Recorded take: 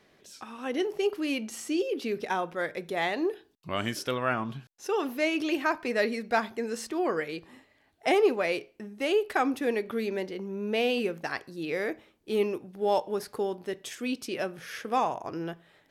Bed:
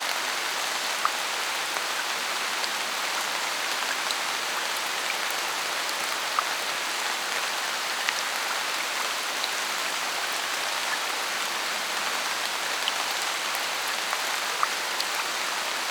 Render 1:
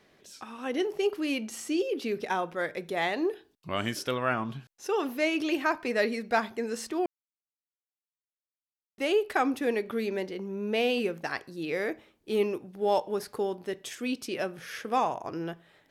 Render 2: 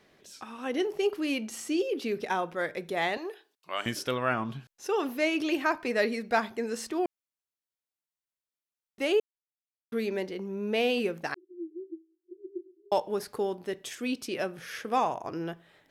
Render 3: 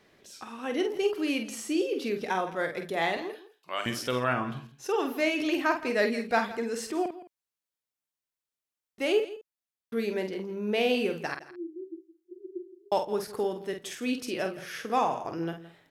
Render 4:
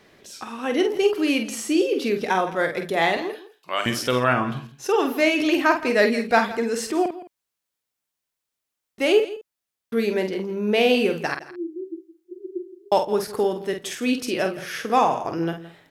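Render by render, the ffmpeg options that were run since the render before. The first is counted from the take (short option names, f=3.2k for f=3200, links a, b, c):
-filter_complex "[0:a]asplit=3[a][b][c];[a]atrim=end=7.06,asetpts=PTS-STARTPTS,afade=t=out:st=7.056:d=0.004:c=hsin[d];[b]atrim=start=7.06:end=8.98,asetpts=PTS-STARTPTS,volume=0[e];[c]atrim=start=8.98,asetpts=PTS-STARTPTS,afade=t=in:d=0.004:c=hsin[f];[d][e][f]concat=n=3:v=0:a=1"
-filter_complex "[0:a]asettb=1/sr,asplit=3[a][b][c];[a]atrim=end=3.174[d];[b]atrim=start=3.17:end=3.86,asetpts=PTS-STARTPTS,afade=t=in:d=0.004:c=qsin,afade=t=out:st=0.686:d=0.004:c=qsin,highpass=630[e];[c]atrim=start=3.856[f];[d][e]acrossfade=d=0.004:c1=hsin:c2=qsin[g];[g][f]acrossfade=d=0.004:c1=qsin:c2=hsin,asettb=1/sr,asplit=3[h][i][j];[h]atrim=end=11.344[k];[i]atrim=start=11.34:end=12.92,asetpts=PTS-STARTPTS,afade=t=in:d=0.004:c=qsin,afade=t=out:st=1.576:d=0.004:c=qsin,asuperpass=centerf=350:order=12:qfactor=5.7[l];[j]atrim=start=12.916[m];[k][l]acrossfade=d=0.004:c1=hsin:c2=qsin[n];[n][m]acrossfade=d=0.004:c1=qsin:c2=hsin,asplit=3[o][p][q];[o]atrim=end=9.2,asetpts=PTS-STARTPTS,afade=t=out:st=9.196:d=0.004:c=hsin[r];[p]atrim=start=9.2:end=9.92,asetpts=PTS-STARTPTS,volume=0[s];[q]atrim=start=9.92,asetpts=PTS-STARTPTS,afade=t=in:d=0.004:c=hsin[t];[r][s][t]concat=n=3:v=0:a=1"
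-filter_complex "[0:a]asplit=2[a][b];[b]adelay=48,volume=-7dB[c];[a][c]amix=inputs=2:normalize=0,aecho=1:1:166:0.15"
-af "volume=7.5dB"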